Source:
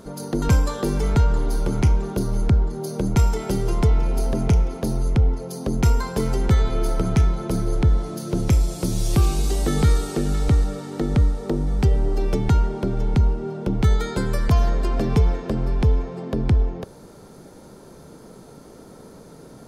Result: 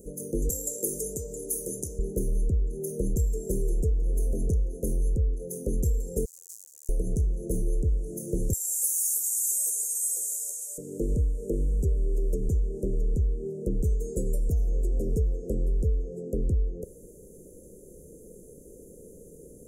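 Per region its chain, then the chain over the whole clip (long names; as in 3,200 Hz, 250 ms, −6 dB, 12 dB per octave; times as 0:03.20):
0:00.49–0:01.99: high-pass filter 100 Hz + spectral tilt +3 dB per octave
0:06.25–0:06.89: each half-wave held at its own peak + resonant band-pass 4,400 Hz, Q 2.5 + first difference
0:08.53–0:10.78: high-pass filter 780 Hz 24 dB per octave + spectral tilt +3.5 dB per octave + double-tracking delay 12 ms −4 dB
whole clip: octave-band graphic EQ 125/250/1,000/2,000/4,000 Hz −11/−9/−10/+11/−5 dB; downward compressor, threshold −24 dBFS; Chebyshev band-stop filter 510–6,900 Hz, order 4; level +3 dB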